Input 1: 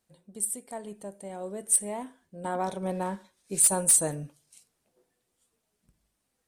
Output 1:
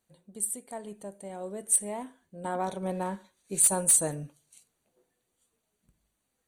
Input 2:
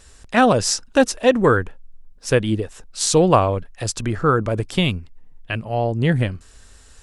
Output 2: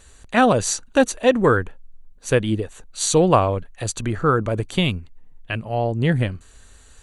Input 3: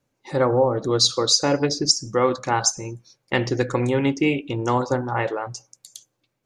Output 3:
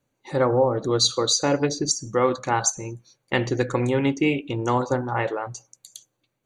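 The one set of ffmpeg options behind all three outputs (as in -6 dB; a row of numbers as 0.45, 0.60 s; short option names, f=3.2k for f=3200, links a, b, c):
-af "asuperstop=centerf=5200:order=12:qfactor=6.8,volume=-1dB"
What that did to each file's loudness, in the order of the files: -1.0, -1.0, -1.5 LU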